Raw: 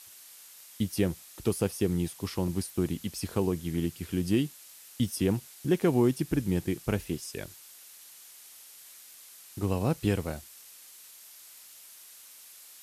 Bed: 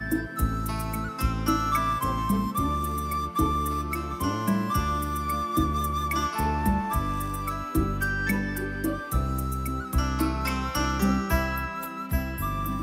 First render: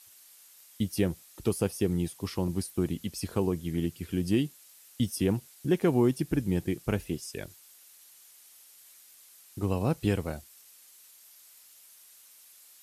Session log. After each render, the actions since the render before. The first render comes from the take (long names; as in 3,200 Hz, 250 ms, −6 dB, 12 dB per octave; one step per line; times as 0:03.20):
broadband denoise 6 dB, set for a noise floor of −51 dBFS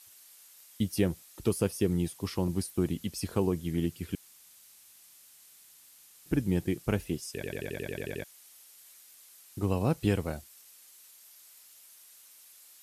0:01.47–0:01.91: notch filter 770 Hz, Q 7.4
0:04.15–0:06.26: fill with room tone
0:07.34: stutter in place 0.09 s, 10 plays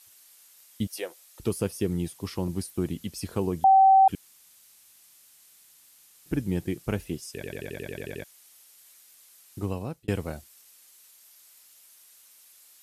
0:00.87–0:01.40: Chebyshev high-pass filter 510 Hz, order 3
0:03.64–0:04.08: beep over 771 Hz −13 dBFS
0:09.60–0:10.08: fade out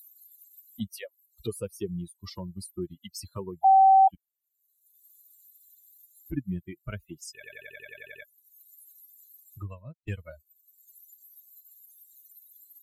spectral dynamics exaggerated over time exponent 3
upward compression, threshold −33 dBFS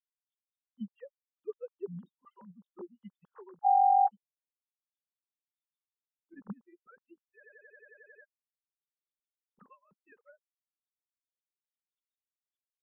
three sine waves on the formant tracks
phaser with its sweep stopped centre 450 Hz, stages 8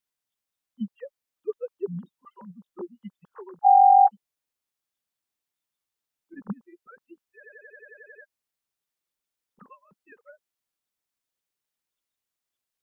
level +8.5 dB